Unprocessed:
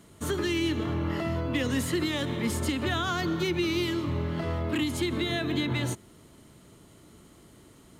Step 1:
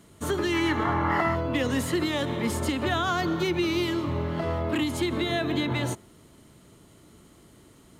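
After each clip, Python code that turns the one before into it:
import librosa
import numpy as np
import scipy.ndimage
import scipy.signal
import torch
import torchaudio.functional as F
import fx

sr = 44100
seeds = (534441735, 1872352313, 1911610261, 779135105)

y = fx.dynamic_eq(x, sr, hz=750.0, q=0.82, threshold_db=-46.0, ratio=4.0, max_db=6)
y = fx.spec_box(y, sr, start_s=0.53, length_s=0.82, low_hz=700.0, high_hz=2300.0, gain_db=10)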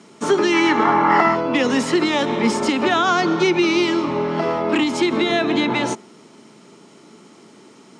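y = fx.cabinet(x, sr, low_hz=170.0, low_slope=24, high_hz=8200.0, hz=(220.0, 410.0, 860.0, 1300.0, 2400.0, 5400.0), db=(5, 6, 7, 4, 6, 9))
y = F.gain(torch.from_numpy(y), 6.0).numpy()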